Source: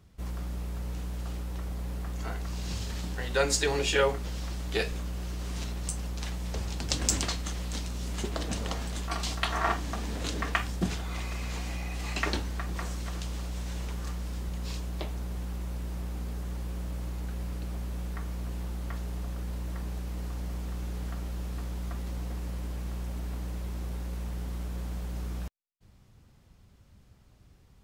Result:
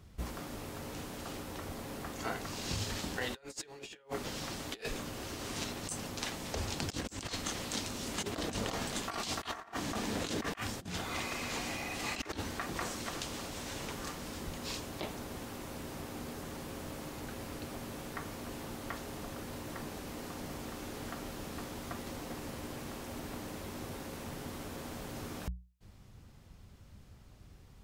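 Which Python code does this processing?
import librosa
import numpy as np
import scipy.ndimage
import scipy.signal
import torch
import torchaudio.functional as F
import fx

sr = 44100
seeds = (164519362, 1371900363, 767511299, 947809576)

y = fx.hum_notches(x, sr, base_hz=60, count=3)
y = fx.over_compress(y, sr, threshold_db=-37.0, ratio=-0.5)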